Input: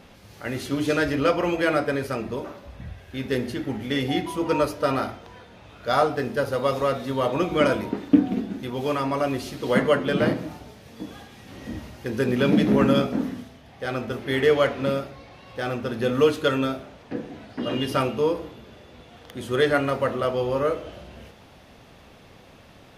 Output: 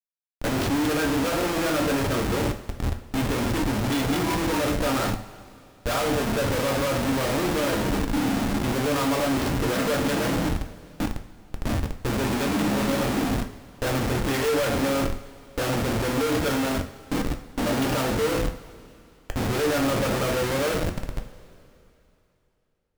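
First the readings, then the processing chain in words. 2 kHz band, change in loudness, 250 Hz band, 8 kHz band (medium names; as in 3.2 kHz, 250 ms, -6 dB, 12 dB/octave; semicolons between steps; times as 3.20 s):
+0.5 dB, -1.0 dB, 0.0 dB, +11.5 dB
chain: Schmitt trigger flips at -33 dBFS; two-slope reverb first 0.41 s, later 3 s, from -18 dB, DRR 5 dB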